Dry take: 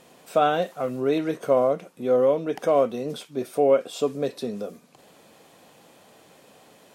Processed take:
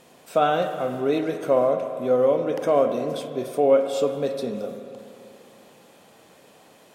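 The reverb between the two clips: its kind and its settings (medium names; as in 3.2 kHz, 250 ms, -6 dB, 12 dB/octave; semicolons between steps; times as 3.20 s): spring tank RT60 2.7 s, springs 33/48 ms, chirp 70 ms, DRR 6.5 dB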